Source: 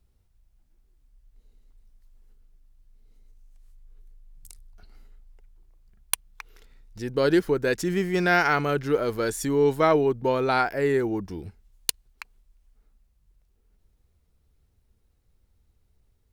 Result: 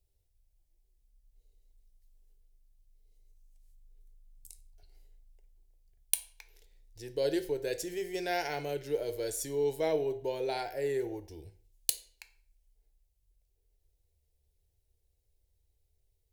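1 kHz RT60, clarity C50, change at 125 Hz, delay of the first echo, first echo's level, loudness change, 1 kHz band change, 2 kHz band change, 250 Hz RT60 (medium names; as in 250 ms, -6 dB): 0.45 s, 14.5 dB, -15.0 dB, no echo, no echo, -9.5 dB, -13.5 dB, -15.5 dB, 0.50 s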